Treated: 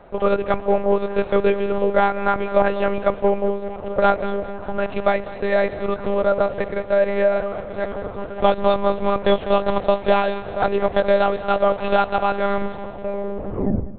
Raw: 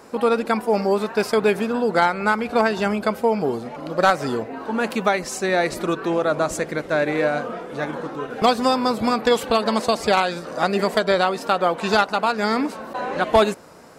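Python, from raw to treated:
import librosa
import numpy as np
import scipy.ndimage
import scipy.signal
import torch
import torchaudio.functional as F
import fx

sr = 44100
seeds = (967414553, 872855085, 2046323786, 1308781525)

p1 = fx.tape_stop_end(x, sr, length_s=1.47)
p2 = fx.lpc_monotone(p1, sr, seeds[0], pitch_hz=200.0, order=8)
p3 = fx.peak_eq(p2, sr, hz=550.0, db=7.5, octaves=1.2)
p4 = p3 + fx.echo_feedback(p3, sr, ms=200, feedback_pct=52, wet_db=-17.0, dry=0)
y = F.gain(torch.from_numpy(p4), -3.0).numpy()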